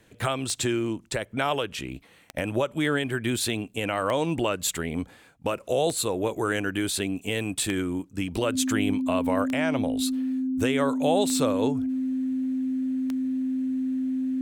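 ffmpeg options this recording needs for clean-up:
-af "adeclick=t=4,bandreject=f=260:w=30"

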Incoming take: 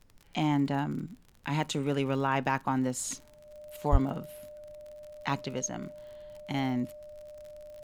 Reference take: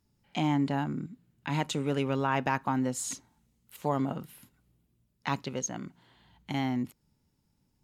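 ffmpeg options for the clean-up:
-filter_complex "[0:a]adeclick=t=4,bandreject=f=600:w=30,asplit=3[a][b][c];[a]afade=t=out:st=3.91:d=0.02[d];[b]highpass=f=140:w=0.5412,highpass=f=140:w=1.3066,afade=t=in:st=3.91:d=0.02,afade=t=out:st=4.03:d=0.02[e];[c]afade=t=in:st=4.03:d=0.02[f];[d][e][f]amix=inputs=3:normalize=0,agate=range=-21dB:threshold=-46dB"

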